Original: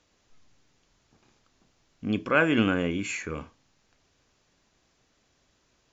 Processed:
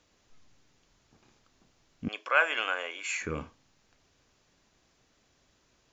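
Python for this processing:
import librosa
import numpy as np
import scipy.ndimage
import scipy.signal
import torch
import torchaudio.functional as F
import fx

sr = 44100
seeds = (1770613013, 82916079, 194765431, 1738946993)

y = fx.highpass(x, sr, hz=640.0, slope=24, at=(2.08, 3.21))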